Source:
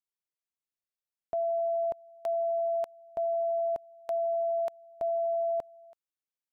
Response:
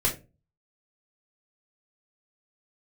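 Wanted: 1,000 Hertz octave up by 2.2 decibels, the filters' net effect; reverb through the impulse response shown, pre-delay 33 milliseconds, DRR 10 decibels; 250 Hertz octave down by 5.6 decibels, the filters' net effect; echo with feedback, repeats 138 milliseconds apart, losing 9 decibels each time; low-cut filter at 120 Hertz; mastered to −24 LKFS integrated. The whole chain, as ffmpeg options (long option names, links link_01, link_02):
-filter_complex "[0:a]highpass=120,equalizer=frequency=250:width_type=o:gain=-8.5,equalizer=frequency=1000:width_type=o:gain=7,aecho=1:1:138|276|414|552:0.355|0.124|0.0435|0.0152,asplit=2[link_01][link_02];[1:a]atrim=start_sample=2205,adelay=33[link_03];[link_02][link_03]afir=irnorm=-1:irlink=0,volume=-19.5dB[link_04];[link_01][link_04]amix=inputs=2:normalize=0,volume=4dB"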